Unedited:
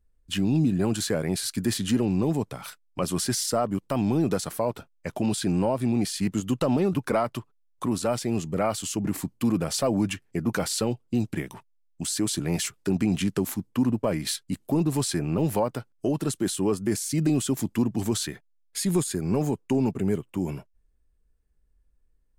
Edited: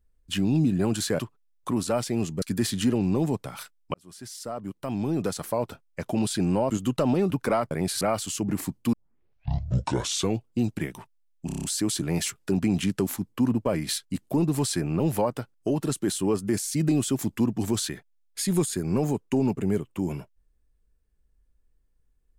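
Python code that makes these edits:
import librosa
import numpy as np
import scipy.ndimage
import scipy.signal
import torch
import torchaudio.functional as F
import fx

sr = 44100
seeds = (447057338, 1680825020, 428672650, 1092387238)

y = fx.edit(x, sr, fx.swap(start_s=1.19, length_s=0.3, other_s=7.34, other_length_s=1.23),
    fx.fade_in_span(start_s=3.01, length_s=1.73),
    fx.cut(start_s=5.77, length_s=0.56),
    fx.tape_start(start_s=9.49, length_s=1.53),
    fx.stutter(start_s=12.02, slice_s=0.03, count=7), tone=tone)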